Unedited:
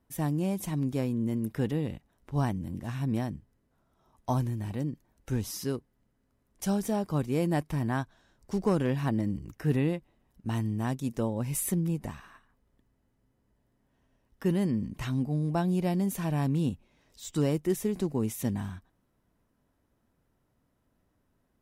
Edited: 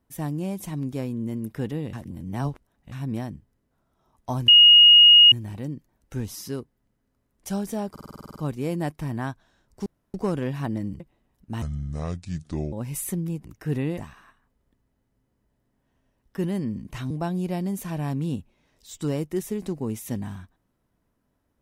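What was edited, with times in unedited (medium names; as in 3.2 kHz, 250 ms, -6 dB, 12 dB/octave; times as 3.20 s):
1.93–2.92 s: reverse
4.48 s: add tone 2.87 kHz -8.5 dBFS 0.84 s
7.07 s: stutter 0.05 s, 10 plays
8.57 s: insert room tone 0.28 s
9.43–9.96 s: move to 12.04 s
10.58–11.32 s: speed 67%
15.17–15.44 s: delete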